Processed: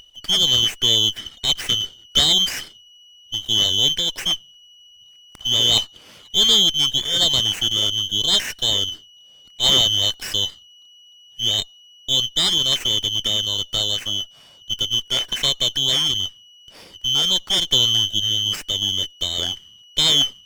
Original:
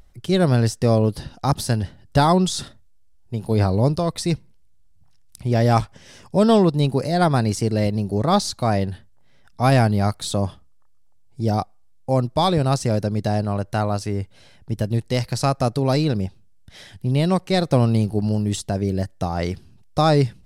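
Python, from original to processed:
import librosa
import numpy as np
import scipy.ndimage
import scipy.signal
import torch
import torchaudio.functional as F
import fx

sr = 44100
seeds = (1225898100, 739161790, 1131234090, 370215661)

y = fx.band_shuffle(x, sr, order='2413')
y = fx.running_max(y, sr, window=3)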